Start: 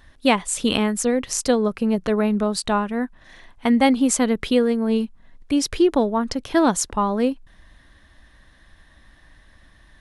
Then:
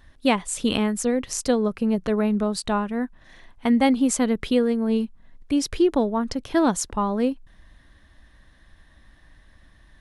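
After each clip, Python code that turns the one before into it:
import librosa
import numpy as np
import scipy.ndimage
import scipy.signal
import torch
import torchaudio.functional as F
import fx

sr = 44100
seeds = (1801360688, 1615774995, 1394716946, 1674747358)

y = fx.low_shelf(x, sr, hz=380.0, db=3.5)
y = y * librosa.db_to_amplitude(-4.0)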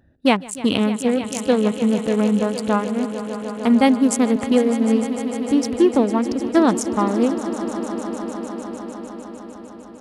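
y = fx.wiener(x, sr, points=41)
y = scipy.signal.sosfilt(scipy.signal.butter(2, 110.0, 'highpass', fs=sr, output='sos'), y)
y = fx.echo_swell(y, sr, ms=151, loudest=5, wet_db=-15.5)
y = y * librosa.db_to_amplitude(4.5)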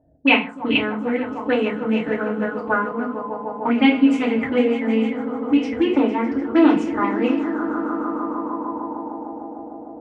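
y = fx.rev_fdn(x, sr, rt60_s=0.34, lf_ratio=1.55, hf_ratio=0.95, size_ms=20.0, drr_db=-5.0)
y = fx.envelope_lowpass(y, sr, base_hz=650.0, top_hz=2600.0, q=6.2, full_db=-6.0, direction='up')
y = y * librosa.db_to_amplitude(-10.0)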